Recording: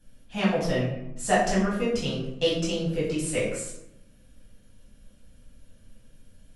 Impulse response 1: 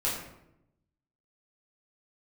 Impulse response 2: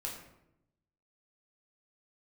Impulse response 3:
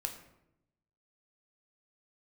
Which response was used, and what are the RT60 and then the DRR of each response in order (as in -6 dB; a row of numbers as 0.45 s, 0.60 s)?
1; 0.80 s, 0.80 s, 0.85 s; -8.0 dB, -2.5 dB, 4.0 dB